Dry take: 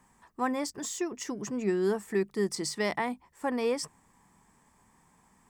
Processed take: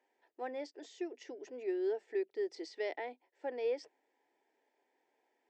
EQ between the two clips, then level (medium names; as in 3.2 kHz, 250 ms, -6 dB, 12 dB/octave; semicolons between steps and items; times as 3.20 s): Gaussian low-pass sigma 2.2 samples; high-pass 310 Hz 24 dB/octave; static phaser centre 470 Hz, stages 4; -4.5 dB